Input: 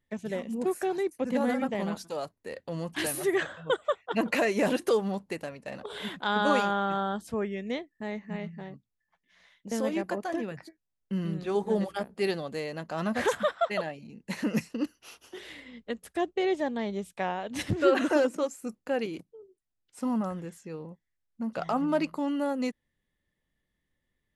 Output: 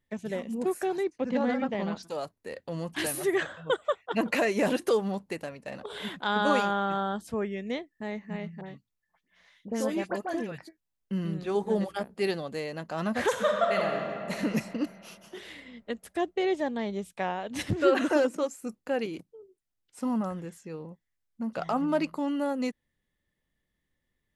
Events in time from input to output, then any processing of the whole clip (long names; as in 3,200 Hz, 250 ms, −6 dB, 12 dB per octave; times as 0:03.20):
0:01.04–0:02.03: low-pass filter 5,700 Hz 24 dB per octave
0:08.61–0:10.58: all-pass dispersion highs, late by 62 ms, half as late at 2,100 Hz
0:13.29–0:14.34: thrown reverb, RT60 2.6 s, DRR 0 dB